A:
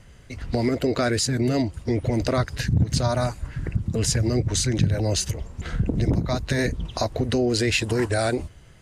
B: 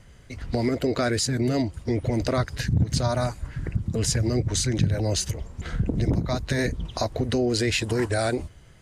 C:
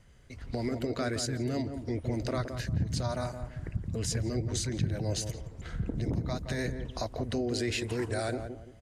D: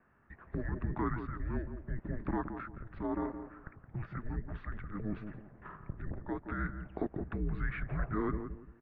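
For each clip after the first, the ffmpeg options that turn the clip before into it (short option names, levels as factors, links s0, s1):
-af "bandreject=f=2700:w=29,volume=0.841"
-filter_complex "[0:a]asplit=2[s0][s1];[s1]adelay=170,lowpass=f=950:p=1,volume=0.473,asplit=2[s2][s3];[s3]adelay=170,lowpass=f=950:p=1,volume=0.33,asplit=2[s4][s5];[s5]adelay=170,lowpass=f=950:p=1,volume=0.33,asplit=2[s6][s7];[s7]adelay=170,lowpass=f=950:p=1,volume=0.33[s8];[s0][s2][s4][s6][s8]amix=inputs=5:normalize=0,volume=0.376"
-af "highpass=f=310:t=q:w=0.5412,highpass=f=310:t=q:w=1.307,lowpass=f=2200:t=q:w=0.5176,lowpass=f=2200:t=q:w=0.7071,lowpass=f=2200:t=q:w=1.932,afreqshift=-320,volume=1.12"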